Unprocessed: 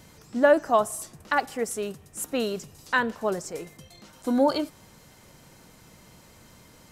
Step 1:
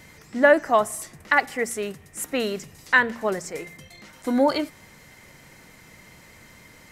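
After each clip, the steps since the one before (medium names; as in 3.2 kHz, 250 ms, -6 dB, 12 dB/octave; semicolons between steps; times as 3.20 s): peaking EQ 2 kHz +11.5 dB 0.49 oct; de-hum 58.3 Hz, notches 4; trim +1.5 dB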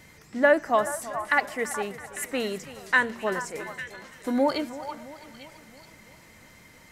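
repeats whose band climbs or falls 425 ms, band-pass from 1 kHz, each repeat 1.4 oct, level -7.5 dB; modulated delay 333 ms, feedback 57%, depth 51 cents, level -16.5 dB; trim -3.5 dB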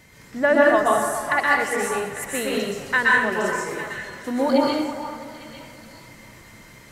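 plate-style reverb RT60 0.78 s, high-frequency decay 0.8×, pre-delay 110 ms, DRR -4.5 dB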